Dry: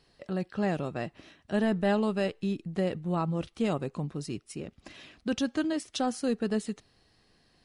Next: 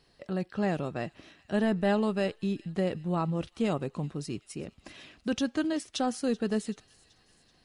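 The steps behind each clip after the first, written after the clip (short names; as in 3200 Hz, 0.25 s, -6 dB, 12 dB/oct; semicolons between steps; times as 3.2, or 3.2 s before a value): thin delay 0.382 s, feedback 58%, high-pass 2600 Hz, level -19 dB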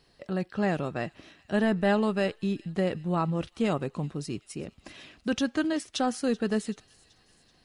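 dynamic EQ 1600 Hz, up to +3 dB, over -44 dBFS, Q 1; gain +1.5 dB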